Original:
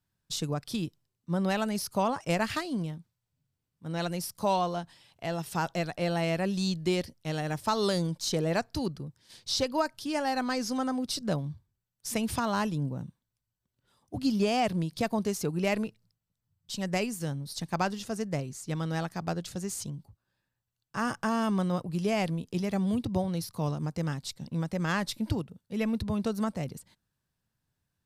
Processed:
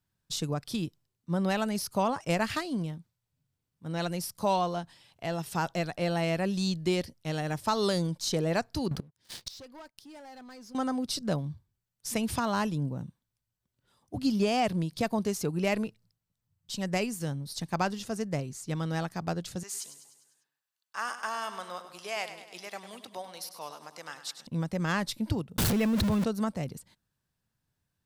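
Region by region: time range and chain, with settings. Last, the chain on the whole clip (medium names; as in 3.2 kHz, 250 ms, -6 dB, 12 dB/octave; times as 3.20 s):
8.91–10.75 s: waveshaping leveller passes 3 + inverted gate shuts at -23 dBFS, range -26 dB
19.63–24.47 s: high-pass 880 Hz + feedback delay 100 ms, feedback 57%, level -11.5 dB
25.58–26.24 s: jump at every zero crossing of -34.5 dBFS + level flattener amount 100%
whole clip: none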